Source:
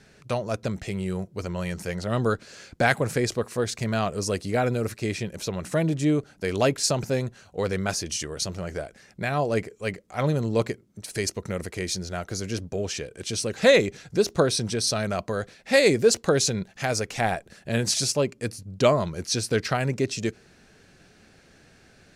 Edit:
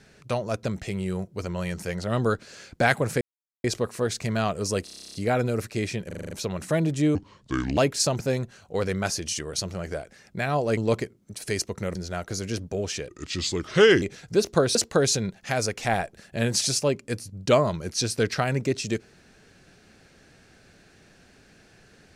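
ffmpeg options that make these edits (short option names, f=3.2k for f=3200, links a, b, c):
-filter_complex "[0:a]asplit=25[a][b][c][d][e][f][g][h][i][j][k][l][m][n][o][p][q][r][s][t][u][v][w][x][y];[a]atrim=end=3.21,asetpts=PTS-STARTPTS,afade=t=out:st=3.206:d=0.004:c=hsin,apad=pad_dur=0.43[z];[b]atrim=start=3.21:end=4.442,asetpts=PTS-STARTPTS,afade=t=in:d=0.004:c=hsin[aa];[c]atrim=start=4.408:end=4.442[ab];[d]atrim=start=4.408:end=4.442[ac];[e]atrim=start=4.408:end=4.442[ad];[f]atrim=start=4.408:end=4.442[ae];[g]atrim=start=4.408:end=4.442[af];[h]atrim=start=4.408:end=4.442[ag];[i]atrim=start=4.408:end=4.442[ah];[j]atrim=start=4.408:end=4.442[ai];[k]atrim=start=4.408:end=4.442[aj];[l]atrim=start=4.408:end=5.382[ak];[m]atrim=start=5.338:end=5.382[al];[n]atrim=start=5.338:end=5.382[am];[o]atrim=start=5.338:end=5.382[an];[p]atrim=start=5.338:end=5.382[ao];[q]atrim=start=5.338:end=5.382[ap];[r]atrim=start=5.338:end=6.184[aq];[s]atrim=start=6.18:end=6.61,asetpts=PTS-STARTPTS,asetrate=30429,aresample=44100[ar];[t]atrim=start=6.606:end=9.612[as];[u]atrim=start=10.448:end=11.632[at];[v]atrim=start=11.958:end=13.094[au];[w]atrim=start=13.09:end=13.84,asetpts=PTS-STARTPTS,asetrate=35280,aresample=44100[av];[x]atrim=start=13.836:end=14.572[aw];[y]atrim=start=16.078[ax];[z][aa]concat=n=2:v=0:a=1[ay];[ay][ab]acrossfade=d=0.004:c1=hsin:c2=hsin[az];[az][ac]acrossfade=d=0.004:c1=hsin:c2=hsin[ba];[ba][ad]acrossfade=d=0.004:c1=hsin:c2=hsin[bb];[bb][ae]acrossfade=d=0.004:c1=hsin:c2=hsin[bc];[bc][af]acrossfade=d=0.004:c1=hsin:c2=hsin[bd];[bd][ag]acrossfade=d=0.004:c1=hsin:c2=hsin[be];[be][ah]acrossfade=d=0.004:c1=hsin:c2=hsin[bf];[bf][ai]acrossfade=d=0.004:c1=hsin:c2=hsin[bg];[bg][aj]acrossfade=d=0.004:c1=hsin:c2=hsin[bh];[bh][ak]acrossfade=d=0.004:c1=hsin:c2=hsin[bi];[bi][al]acrossfade=d=0.004:c1=hsin:c2=hsin[bj];[bj][am]acrossfade=d=0.004:c1=hsin:c2=hsin[bk];[bk][an]acrossfade=d=0.004:c1=hsin:c2=hsin[bl];[bl][ao]acrossfade=d=0.004:c1=hsin:c2=hsin[bm];[bm][ap]acrossfade=d=0.004:c1=hsin:c2=hsin[bn];[bn][aq]acrossfade=d=0.004:c1=hsin:c2=hsin[bo];[bo][ar]acrossfade=d=0.004:c1=hsin:c2=hsin[bp];[bp][as]acrossfade=d=0.004:c1=hsin:c2=hsin[bq];[bq][at]acrossfade=d=0.004:c1=hsin:c2=hsin[br];[br][au]acrossfade=d=0.004:c1=hsin:c2=hsin[bs];[bs][av]acrossfade=d=0.004:c1=hsin:c2=hsin[bt];[bt][aw]acrossfade=d=0.004:c1=hsin:c2=hsin[bu];[bu][ax]acrossfade=d=0.004:c1=hsin:c2=hsin"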